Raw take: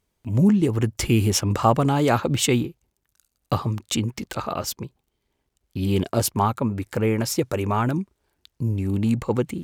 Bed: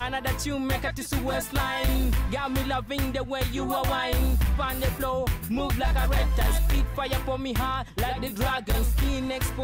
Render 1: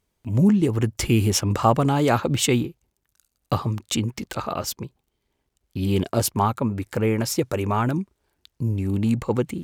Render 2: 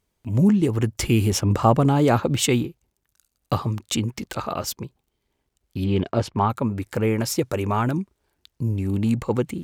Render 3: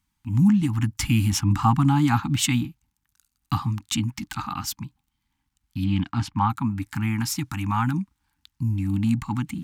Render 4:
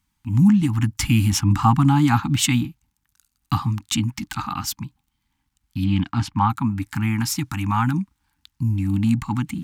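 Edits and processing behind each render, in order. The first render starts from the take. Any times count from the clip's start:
nothing audible
1.32–2.27 tilt shelf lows +3 dB, about 850 Hz; 5.84–6.5 LPF 3300 Hz
Chebyshev band-stop 300–800 Hz, order 4
gain +3 dB

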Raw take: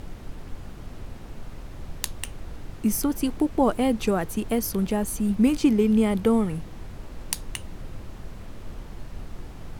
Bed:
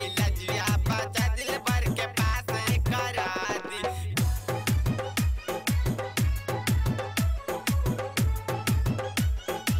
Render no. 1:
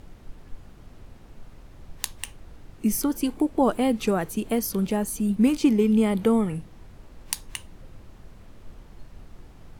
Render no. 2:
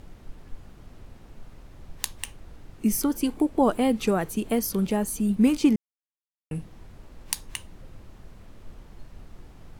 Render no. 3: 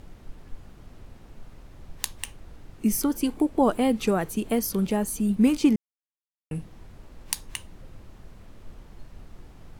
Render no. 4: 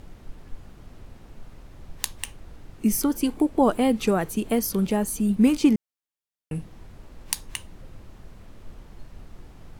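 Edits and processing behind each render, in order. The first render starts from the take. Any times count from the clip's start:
noise print and reduce 8 dB
5.76–6.51 mute
nothing audible
gain +1.5 dB

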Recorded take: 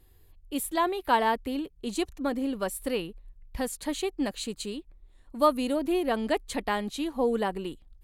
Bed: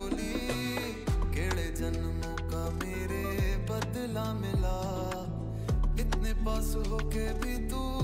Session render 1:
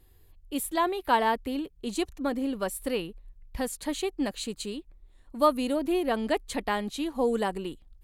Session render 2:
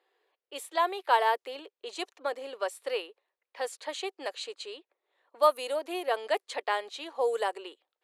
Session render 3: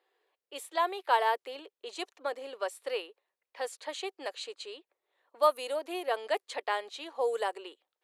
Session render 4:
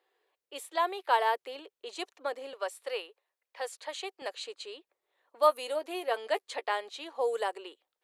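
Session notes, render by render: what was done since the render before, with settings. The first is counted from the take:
7.15–7.58 bell 7400 Hz +8 dB 0.98 oct
low-pass opened by the level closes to 2700 Hz, open at -21 dBFS; steep high-pass 430 Hz 36 dB/oct
gain -2 dB
2.53–4.22 HPF 410 Hz; 5.43–6.71 doubler 13 ms -12 dB

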